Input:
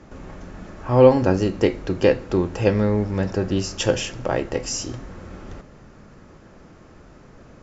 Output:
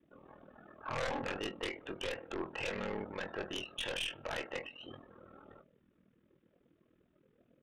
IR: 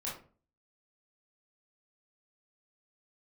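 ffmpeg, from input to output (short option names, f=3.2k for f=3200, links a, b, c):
-filter_complex "[0:a]afftdn=nr=26:nf=-39,aderivative,alimiter=level_in=3.5dB:limit=-24dB:level=0:latency=1:release=69,volume=-3.5dB,aresample=8000,aeval=exprs='0.015*(abs(mod(val(0)/0.015+3,4)-2)-1)':c=same,aresample=44100,aeval=exprs='val(0)*sin(2*PI*20*n/s)':c=same,aeval=exprs='0.02*(cos(1*acos(clip(val(0)/0.02,-1,1)))-cos(1*PI/2))+0.00355*(cos(4*acos(clip(val(0)/0.02,-1,1)))-cos(4*PI/2))+0.00708*(cos(5*acos(clip(val(0)/0.02,-1,1)))-cos(5*PI/2))':c=same,asplit=2[a][b];[b]adelay=21,volume=-9dB[c];[a][c]amix=inputs=2:normalize=0,volume=4dB"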